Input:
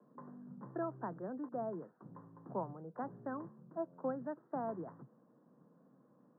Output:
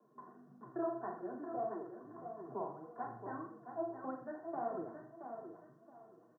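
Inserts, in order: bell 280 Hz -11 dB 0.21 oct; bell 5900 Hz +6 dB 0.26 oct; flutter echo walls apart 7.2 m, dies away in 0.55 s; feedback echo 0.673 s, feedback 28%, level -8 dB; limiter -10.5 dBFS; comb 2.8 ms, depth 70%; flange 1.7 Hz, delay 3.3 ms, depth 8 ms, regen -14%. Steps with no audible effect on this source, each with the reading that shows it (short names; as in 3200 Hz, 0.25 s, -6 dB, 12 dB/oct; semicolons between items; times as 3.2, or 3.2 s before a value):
bell 5900 Hz: input band ends at 1700 Hz; limiter -10.5 dBFS: input peak -26.0 dBFS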